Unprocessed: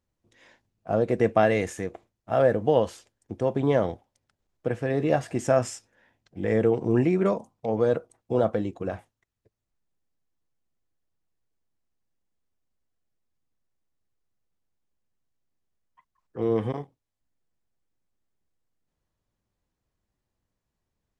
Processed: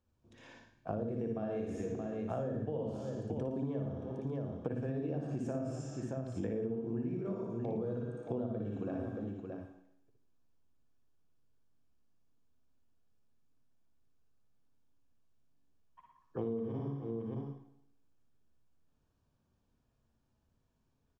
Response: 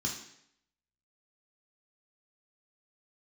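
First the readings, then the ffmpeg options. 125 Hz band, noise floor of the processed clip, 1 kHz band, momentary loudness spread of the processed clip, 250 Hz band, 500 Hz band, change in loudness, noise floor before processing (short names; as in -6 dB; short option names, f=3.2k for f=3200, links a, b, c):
-8.0 dB, -77 dBFS, -17.0 dB, 6 LU, -8.5 dB, -14.0 dB, -13.0 dB, -84 dBFS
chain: -filter_complex "[0:a]asplit=2[a][b];[1:a]atrim=start_sample=2205,adelay=60[c];[b][c]afir=irnorm=-1:irlink=0,volume=-8dB[d];[a][d]amix=inputs=2:normalize=0,acrossover=split=480[e][f];[f]acompressor=threshold=-40dB:ratio=2[g];[e][g]amix=inputs=2:normalize=0,bandreject=f=2k:w=5.7,aecho=1:1:57|114|624:0.562|0.335|0.224,acompressor=threshold=-34dB:ratio=12,aemphasis=mode=reproduction:type=cd"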